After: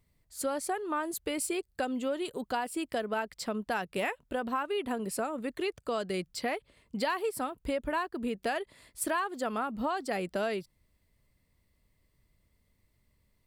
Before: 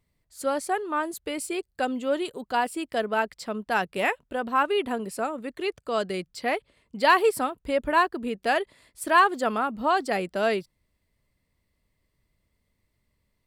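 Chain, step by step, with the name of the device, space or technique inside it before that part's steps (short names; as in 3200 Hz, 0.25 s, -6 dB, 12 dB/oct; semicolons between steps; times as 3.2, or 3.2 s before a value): ASMR close-microphone chain (low shelf 180 Hz +3.5 dB; compressor 6:1, threshold -29 dBFS, peak gain reduction 14.5 dB; high shelf 8700 Hz +4.5 dB)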